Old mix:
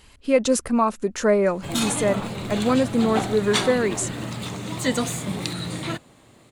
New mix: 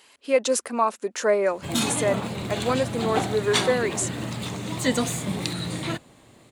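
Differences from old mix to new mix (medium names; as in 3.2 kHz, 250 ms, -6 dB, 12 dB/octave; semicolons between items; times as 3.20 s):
speech: add high-pass 420 Hz 12 dB/octave; master: add peaking EQ 1.3 kHz -2.5 dB 0.25 oct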